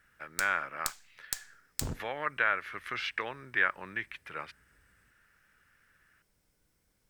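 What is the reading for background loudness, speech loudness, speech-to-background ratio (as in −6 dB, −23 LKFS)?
−39.5 LKFS, −33.5 LKFS, 6.0 dB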